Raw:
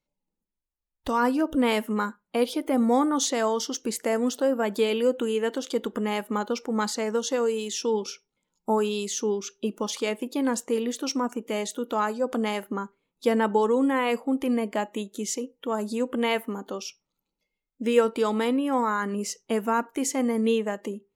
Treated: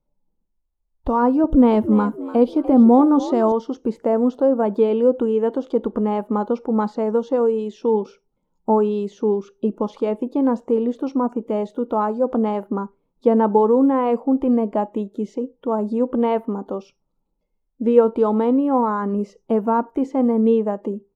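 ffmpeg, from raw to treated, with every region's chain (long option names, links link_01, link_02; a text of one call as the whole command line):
ffmpeg -i in.wav -filter_complex "[0:a]asettb=1/sr,asplit=3[link_01][link_02][link_03];[link_01]atrim=end=1.444[link_04];[link_02]atrim=start=1.44:end=3.52,asetpts=PTS-STARTPTS,afade=type=in:duration=0.004:curve=qsin,afade=type=out:start_time=2.076:duration=0.004:curve=qsin,bass=frequency=250:gain=7,treble=frequency=4000:gain=9,asplit=4[link_05][link_06][link_07][link_08];[link_06]adelay=293,afreqshift=61,volume=-14dB[link_09];[link_07]adelay=586,afreqshift=122,volume=-24.5dB[link_10];[link_08]adelay=879,afreqshift=183,volume=-34.9dB[link_11];[link_05][link_09][link_10][link_11]amix=inputs=4:normalize=0,atrim=end_sample=91728[link_12];[link_03]atrim=start=3.516[link_13];[link_04][link_12]acrossfade=duration=0.004:curve1=hsin:curve2=qsin[link_14];[link_14][link_13]acrossfade=duration=0.004:curve1=qsin:curve2=hsin,lowshelf=frequency=69:gain=11.5,acrossover=split=4500[link_15][link_16];[link_16]acompressor=threshold=-50dB:ratio=4:attack=1:release=60[link_17];[link_15][link_17]amix=inputs=2:normalize=0,firequalizer=gain_entry='entry(910,0);entry(1800,-17);entry(11000,-23)':delay=0.05:min_phase=1,volume=6.5dB" out.wav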